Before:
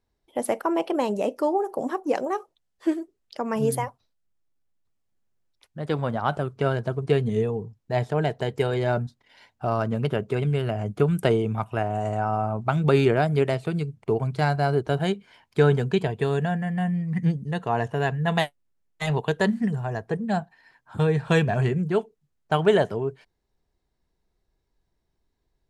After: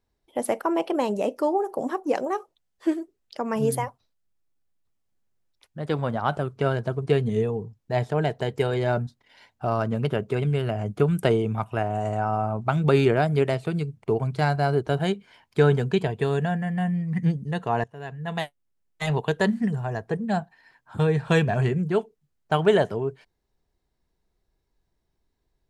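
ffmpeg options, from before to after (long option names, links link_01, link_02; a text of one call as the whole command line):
ffmpeg -i in.wav -filter_complex "[0:a]asplit=2[link_01][link_02];[link_01]atrim=end=17.84,asetpts=PTS-STARTPTS,afade=type=out:start_time=17.836:duration=0.004:curve=hsin:silence=0.0944061[link_03];[link_02]atrim=start=17.84,asetpts=PTS-STARTPTS,afade=type=in:duration=1.2:silence=0.0944061[link_04];[link_03][link_04]concat=n=2:v=0:a=1" out.wav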